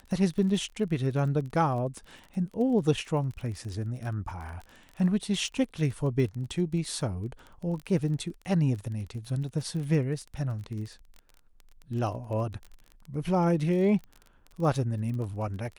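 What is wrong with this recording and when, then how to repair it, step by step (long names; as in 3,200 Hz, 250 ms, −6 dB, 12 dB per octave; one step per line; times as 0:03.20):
surface crackle 27 per second −36 dBFS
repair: click removal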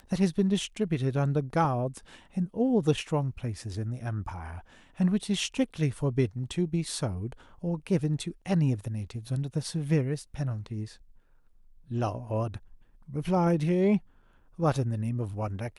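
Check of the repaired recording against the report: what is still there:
none of them is left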